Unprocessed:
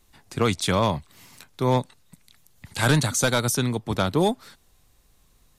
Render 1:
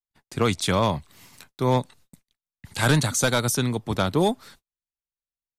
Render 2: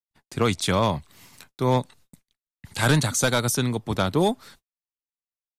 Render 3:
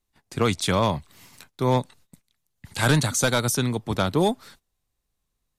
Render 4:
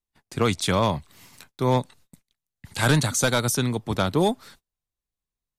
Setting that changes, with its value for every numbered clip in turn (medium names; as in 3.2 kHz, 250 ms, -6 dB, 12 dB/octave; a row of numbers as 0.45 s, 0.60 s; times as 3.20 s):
gate, range: -45 dB, -60 dB, -18 dB, -30 dB